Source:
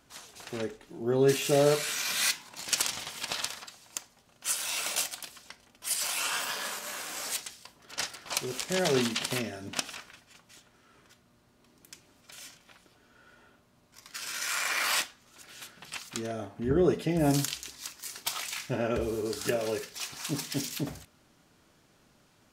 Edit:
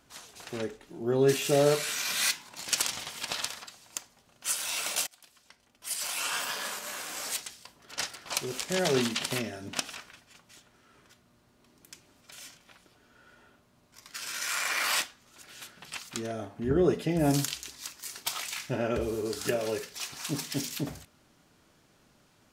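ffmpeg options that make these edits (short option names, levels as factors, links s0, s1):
-filter_complex "[0:a]asplit=2[s0][s1];[s0]atrim=end=5.07,asetpts=PTS-STARTPTS,afade=t=out:st=5.066:d=0.004:c=hsin:silence=0.0794328[s2];[s1]atrim=start=5.07,asetpts=PTS-STARTPTS,afade=t=in:d=1.32:silence=0.0794328[s3];[s2][s3]concat=n=2:v=0:a=1"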